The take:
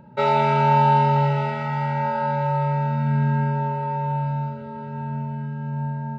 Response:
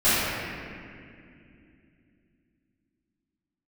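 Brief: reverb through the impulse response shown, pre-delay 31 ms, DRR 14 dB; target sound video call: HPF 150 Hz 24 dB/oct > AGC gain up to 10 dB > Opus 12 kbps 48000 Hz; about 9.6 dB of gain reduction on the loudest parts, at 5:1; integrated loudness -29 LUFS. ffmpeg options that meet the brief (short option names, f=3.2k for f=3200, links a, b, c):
-filter_complex "[0:a]acompressor=threshold=-24dB:ratio=5,asplit=2[a][b];[1:a]atrim=start_sample=2205,adelay=31[c];[b][c]afir=irnorm=-1:irlink=0,volume=-34dB[d];[a][d]amix=inputs=2:normalize=0,highpass=f=150:w=0.5412,highpass=f=150:w=1.3066,dynaudnorm=m=10dB,volume=1.5dB" -ar 48000 -c:a libopus -b:a 12k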